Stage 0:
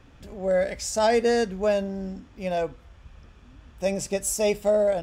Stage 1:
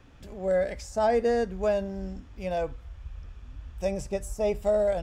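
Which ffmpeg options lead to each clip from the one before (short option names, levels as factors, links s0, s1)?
-filter_complex "[0:a]asubboost=boost=5:cutoff=97,acrossover=split=1600[s0][s1];[s1]acompressor=threshold=0.00794:ratio=6[s2];[s0][s2]amix=inputs=2:normalize=0,volume=0.794"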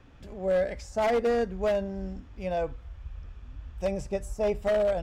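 -af "highshelf=f=6200:g=-8.5,aeval=exprs='0.106*(abs(mod(val(0)/0.106+3,4)-2)-1)':c=same"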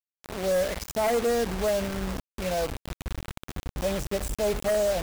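-filter_complex "[0:a]asplit=2[s0][s1];[s1]alimiter=level_in=1.68:limit=0.0631:level=0:latency=1:release=25,volume=0.596,volume=1.33[s2];[s0][s2]amix=inputs=2:normalize=0,acrusher=bits=4:mix=0:aa=0.000001,volume=0.708"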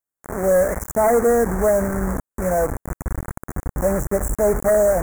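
-af "asuperstop=centerf=3600:order=8:qfactor=0.73,volume=2.66"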